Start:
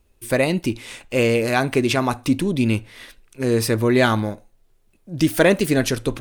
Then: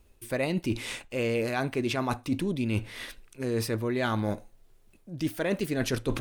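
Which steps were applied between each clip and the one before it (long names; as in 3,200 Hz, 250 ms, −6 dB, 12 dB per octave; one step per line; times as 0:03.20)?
dynamic equaliser 9,100 Hz, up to −4 dB, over −41 dBFS, Q 0.8
reversed playback
downward compressor 10 to 1, threshold −26 dBFS, peak gain reduction 16.5 dB
reversed playback
level +1 dB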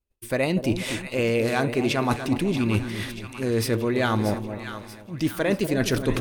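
echo with a time of its own for lows and highs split 1,000 Hz, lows 242 ms, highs 633 ms, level −9.5 dB
downward expander −43 dBFS
level +5 dB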